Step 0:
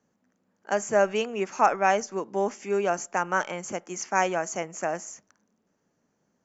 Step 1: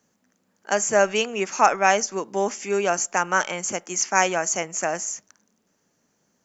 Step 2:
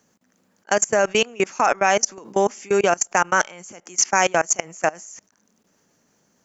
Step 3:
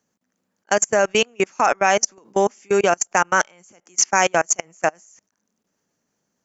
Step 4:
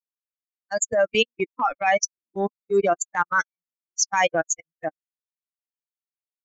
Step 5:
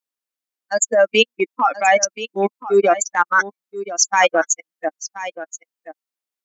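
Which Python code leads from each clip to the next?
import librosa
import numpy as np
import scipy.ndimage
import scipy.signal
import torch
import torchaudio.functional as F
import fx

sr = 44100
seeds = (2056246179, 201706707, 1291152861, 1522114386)

y1 = fx.high_shelf(x, sr, hz=2300.0, db=10.5)
y1 = y1 * 10.0 ** (2.0 / 20.0)
y2 = fx.level_steps(y1, sr, step_db=24)
y2 = y2 * 10.0 ** (7.5 / 20.0)
y3 = fx.upward_expand(y2, sr, threshold_db=-39.0, expansion=1.5)
y3 = y3 * 10.0 ** (1.5 / 20.0)
y4 = fx.bin_expand(y3, sr, power=3.0)
y4 = fx.transient(y4, sr, attack_db=-7, sustain_db=-2)
y4 = y4 * 10.0 ** (4.5 / 20.0)
y5 = fx.brickwall_highpass(y4, sr, low_hz=190.0)
y5 = y5 + 10.0 ** (-14.0 / 20.0) * np.pad(y5, (int(1028 * sr / 1000.0), 0))[:len(y5)]
y5 = y5 * 10.0 ** (6.0 / 20.0)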